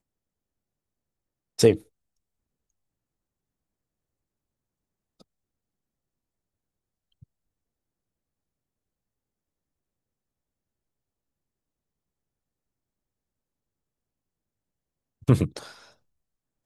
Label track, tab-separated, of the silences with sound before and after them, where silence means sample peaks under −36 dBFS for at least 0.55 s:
1.770000	15.280000	silence